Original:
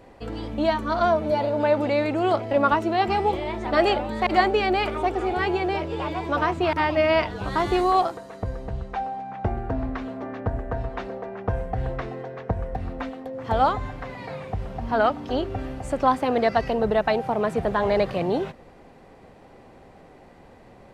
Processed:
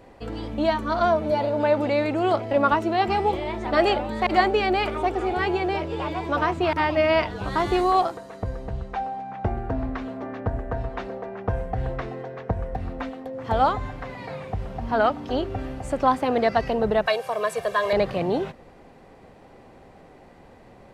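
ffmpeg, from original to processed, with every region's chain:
ffmpeg -i in.wav -filter_complex "[0:a]asettb=1/sr,asplit=3[link_01][link_02][link_03];[link_01]atrim=end=17.064[link_04];[link_02]atrim=start=17.06:end=17.93,asetpts=PTS-STARTPTS,afade=type=in:duration=0.004:curve=qsin,afade=type=out:start_time=0.866:duration=0.004:curve=qsin,highpass=frequency=850:poles=1,aemphasis=mode=production:type=cd,aecho=1:1:1.8:0.99,atrim=end_sample=38367[link_05];[link_03]atrim=start=17.926[link_06];[link_04][link_05]acrossfade=duration=0.004:curve1=hsin:curve2=qsin[link_07];[link_07][link_06]acrossfade=duration=0.004:curve1=qsin:curve2=hsin" out.wav

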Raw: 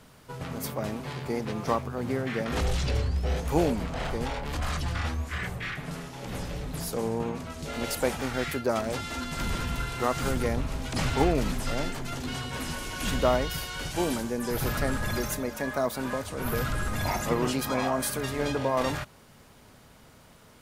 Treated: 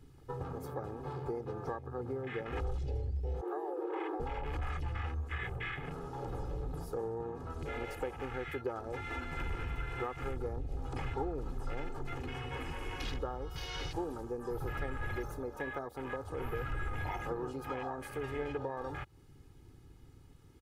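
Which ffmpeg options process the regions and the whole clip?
ffmpeg -i in.wav -filter_complex "[0:a]asettb=1/sr,asplit=3[link_01][link_02][link_03];[link_01]atrim=end=3.414[link_04];[link_02]atrim=start=3.41:end=4.2,asetpts=PTS-STARTPTS,afade=type=in:duration=0.004:curve=qsin,afade=type=out:start_time=0.786:duration=0.004:curve=qsin,equalizer=frequency=6000:width=0.63:gain=-12,acrossover=split=160|4700[link_05][link_06][link_07];[link_05]acompressor=threshold=-36dB:ratio=4[link_08];[link_06]acompressor=threshold=-35dB:ratio=4[link_09];[link_07]acompressor=threshold=-55dB:ratio=4[link_10];[link_08][link_09][link_10]amix=inputs=3:normalize=0,afreqshift=290[link_11];[link_03]atrim=start=4.196[link_12];[link_04][link_11]acrossfade=duration=0.004:curve1=hsin:curve2=qsin[link_13];[link_13][link_12]acrossfade=duration=0.004:curve1=qsin:curve2=hsin,acompressor=threshold=-37dB:ratio=5,afwtdn=0.00562,aecho=1:1:2.4:0.71" out.wav

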